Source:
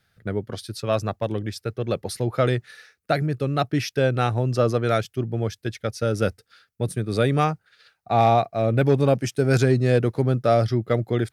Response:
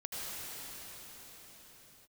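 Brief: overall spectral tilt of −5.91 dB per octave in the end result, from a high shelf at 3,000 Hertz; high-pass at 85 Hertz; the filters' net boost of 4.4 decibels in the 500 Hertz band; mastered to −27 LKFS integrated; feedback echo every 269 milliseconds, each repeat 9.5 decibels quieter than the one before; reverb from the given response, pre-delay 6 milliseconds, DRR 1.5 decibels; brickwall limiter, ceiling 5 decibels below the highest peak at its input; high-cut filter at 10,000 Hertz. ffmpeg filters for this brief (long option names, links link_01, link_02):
-filter_complex "[0:a]highpass=85,lowpass=10000,equalizer=frequency=500:width_type=o:gain=5.5,highshelf=frequency=3000:gain=-3.5,alimiter=limit=-10dB:level=0:latency=1,aecho=1:1:269|538|807|1076:0.335|0.111|0.0365|0.012,asplit=2[link_01][link_02];[1:a]atrim=start_sample=2205,adelay=6[link_03];[link_02][link_03]afir=irnorm=-1:irlink=0,volume=-5dB[link_04];[link_01][link_04]amix=inputs=2:normalize=0,volume=-7dB"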